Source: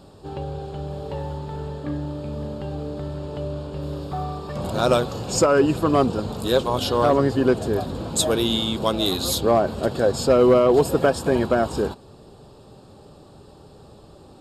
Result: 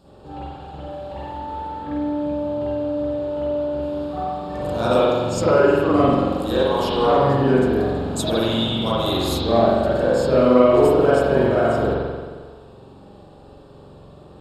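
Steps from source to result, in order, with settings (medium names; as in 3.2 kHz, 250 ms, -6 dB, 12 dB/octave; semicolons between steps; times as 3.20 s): spring tank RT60 1.5 s, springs 44 ms, chirp 40 ms, DRR -9.5 dB; trim -7.5 dB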